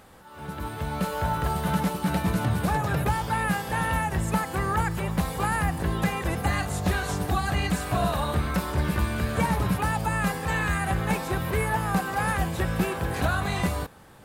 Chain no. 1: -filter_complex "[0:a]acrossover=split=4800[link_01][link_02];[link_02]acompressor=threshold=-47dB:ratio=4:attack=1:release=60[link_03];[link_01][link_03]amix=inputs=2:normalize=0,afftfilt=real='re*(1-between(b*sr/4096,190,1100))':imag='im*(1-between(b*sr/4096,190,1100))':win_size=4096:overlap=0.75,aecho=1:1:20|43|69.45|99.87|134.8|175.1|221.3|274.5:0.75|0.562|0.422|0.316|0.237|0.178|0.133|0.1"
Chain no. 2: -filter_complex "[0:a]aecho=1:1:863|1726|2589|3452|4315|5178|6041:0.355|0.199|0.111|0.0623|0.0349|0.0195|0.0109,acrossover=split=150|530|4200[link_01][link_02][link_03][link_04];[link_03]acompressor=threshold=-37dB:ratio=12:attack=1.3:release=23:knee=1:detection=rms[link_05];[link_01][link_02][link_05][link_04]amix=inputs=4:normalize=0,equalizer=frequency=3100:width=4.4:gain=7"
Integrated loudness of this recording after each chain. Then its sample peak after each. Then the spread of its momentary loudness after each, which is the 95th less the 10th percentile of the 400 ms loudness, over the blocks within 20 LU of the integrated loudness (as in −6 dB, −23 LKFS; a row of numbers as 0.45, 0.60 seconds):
−26.0, −28.0 LKFS; −11.0, −12.5 dBFS; 3, 3 LU